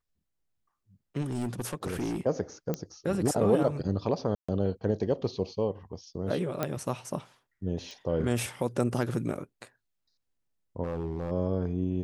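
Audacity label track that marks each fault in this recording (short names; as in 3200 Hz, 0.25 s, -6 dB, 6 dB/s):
1.210000	2.210000	clipped -27.5 dBFS
2.740000	2.740000	pop -17 dBFS
4.350000	4.490000	gap 0.135 s
6.630000	6.630000	pop -14 dBFS
7.910000	7.910000	pop
10.840000	11.320000	clipped -28.5 dBFS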